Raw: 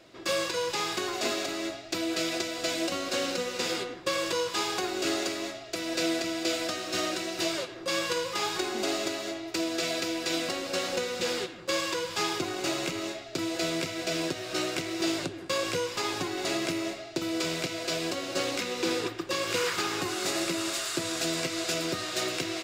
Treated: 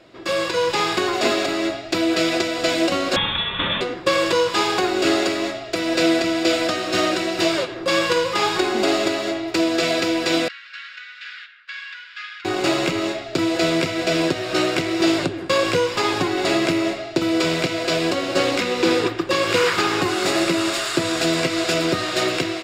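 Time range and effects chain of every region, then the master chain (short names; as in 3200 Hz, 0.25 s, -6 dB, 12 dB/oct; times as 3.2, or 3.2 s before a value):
3.16–3.81 low shelf 230 Hz -5.5 dB + inverted band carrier 3900 Hz
10.48–12.45 elliptic high-pass 1500 Hz, stop band 50 dB + tape spacing loss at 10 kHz 38 dB
whole clip: high shelf 5700 Hz -11 dB; notch 6100 Hz, Q 13; AGC gain up to 5.5 dB; gain +6 dB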